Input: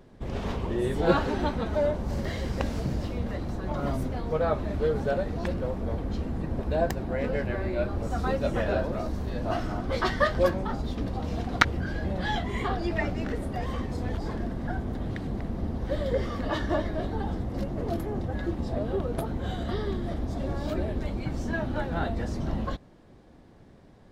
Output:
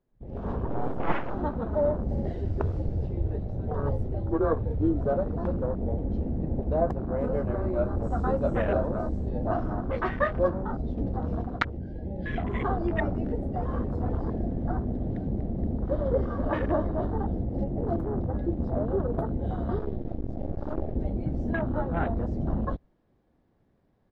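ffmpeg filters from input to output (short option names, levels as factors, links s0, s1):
-filter_complex "[0:a]asettb=1/sr,asplit=3[s0][s1][s2];[s0]atrim=end=0.674[s3];[s1]atrim=start=0.67:end=1.35,asetpts=PTS-STARTPTS,afade=t=in:d=0.004:c=qsin,afade=t=out:st=0.676:d=0.004:c=qsin,aeval=exprs='abs(val(0))':c=same[s4];[s2]atrim=start=1.346[s5];[s3][s4]acrossfade=d=0.004:c1=hsin:c2=qsin[s6];[s6][s5]acrossfade=d=0.004:c1=qsin:c2=hsin,asettb=1/sr,asplit=3[s7][s8][s9];[s7]atrim=end=2.334[s10];[s8]atrim=start=2.33:end=5.04,asetpts=PTS-STARTPTS,afade=t=in:d=0.004:c=qsin,afade=t=out:st=2.706:d=0.004:c=qsin,afreqshift=-140[s11];[s9]atrim=start=5.036[s12];[s10][s11]acrossfade=d=0.004:c1=hsin:c2=qsin[s13];[s13][s12]acrossfade=d=0.004:c1=qsin:c2=hsin,asettb=1/sr,asplit=3[s14][s15][s16];[s14]atrim=end=7.174[s17];[s15]atrim=start=7.17:end=9.29,asetpts=PTS-STARTPTS,afade=t=in:d=0.004:c=qsin,afade=t=out:st=2.116:d=0.004:c=qsin,lowpass=f=8000:t=q:w=4.9[s18];[s16]atrim=start=9.286[s19];[s17][s18]acrossfade=d=0.004:c1=hsin:c2=qsin[s20];[s20][s19]acrossfade=d=0.004:c1=qsin:c2=hsin,asettb=1/sr,asplit=3[s21][s22][s23];[s21]atrim=end=11.774[s24];[s22]atrim=start=11.77:end=12.38,asetpts=PTS-STARTPTS,afade=t=in:d=0.004:c=qsin,afade=t=out:st=0.606:d=0.004:c=qsin,asuperstop=centerf=1000:order=8:qfactor=1.1[s25];[s23]atrim=start=12.376[s26];[s24][s25]acrossfade=d=0.004:c1=hsin:c2=qsin[s27];[s27][s26]acrossfade=d=0.004:c1=qsin:c2=hsin,asplit=3[s28][s29][s30];[s28]afade=t=out:st=13.71:d=0.02[s31];[s29]aecho=1:1:472:0.335,afade=t=in:st=13.71:d=0.02,afade=t=out:st=17.15:d=0.02[s32];[s30]afade=t=in:st=17.15:d=0.02[s33];[s31][s32][s33]amix=inputs=3:normalize=0,asettb=1/sr,asplit=3[s34][s35][s36];[s34]atrim=end=19.794[s37];[s35]atrim=start=19.79:end=20.95,asetpts=PTS-STARTPTS,afade=t=in:d=0.004:c=qsin,afade=t=out:st=1.156:d=0.004:c=qsin,aeval=exprs='max(val(0),0)':c=same[s38];[s36]atrim=start=20.946[s39];[s37][s38]acrossfade=d=0.004:c1=hsin:c2=qsin[s40];[s40][s39]acrossfade=d=0.004:c1=qsin:c2=hsin,afwtdn=0.02,lowpass=f=2700:p=1,dynaudnorm=f=270:g=3:m=3.55,volume=0.355"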